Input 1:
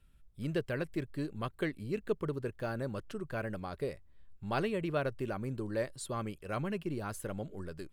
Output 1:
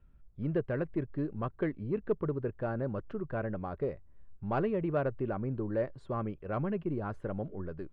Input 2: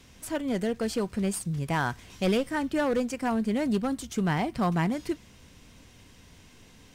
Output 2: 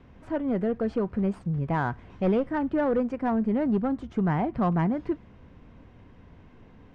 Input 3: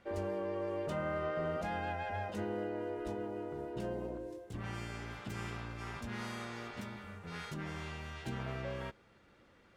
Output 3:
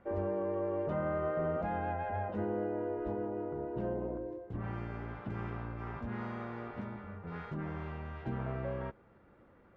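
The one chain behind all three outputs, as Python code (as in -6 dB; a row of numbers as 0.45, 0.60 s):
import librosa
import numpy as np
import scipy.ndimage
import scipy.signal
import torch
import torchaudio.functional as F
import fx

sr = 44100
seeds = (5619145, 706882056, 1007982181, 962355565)

p1 = scipy.signal.sosfilt(scipy.signal.butter(2, 1300.0, 'lowpass', fs=sr, output='sos'), x)
p2 = 10.0 ** (-29.0 / 20.0) * np.tanh(p1 / 10.0 ** (-29.0 / 20.0))
y = p1 + (p2 * librosa.db_to_amplitude(-6.0))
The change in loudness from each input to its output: +2.5, +1.5, +2.5 LU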